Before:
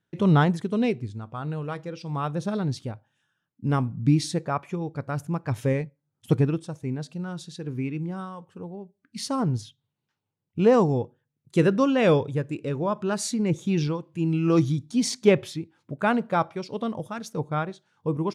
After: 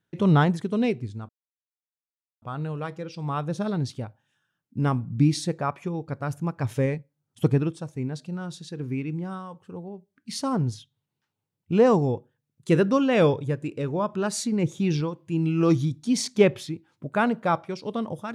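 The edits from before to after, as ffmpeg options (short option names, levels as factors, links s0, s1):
-filter_complex "[0:a]asplit=2[s0][s1];[s0]atrim=end=1.29,asetpts=PTS-STARTPTS,afade=t=out:st=1.286:d=0.004:c=hsin,apad=pad_dur=1.13[s2];[s1]atrim=start=1.29,asetpts=PTS-STARTPTS,afade=t=in:d=0.004:c=hsin[s3];[s2][s3]concat=n=2:v=0:a=1"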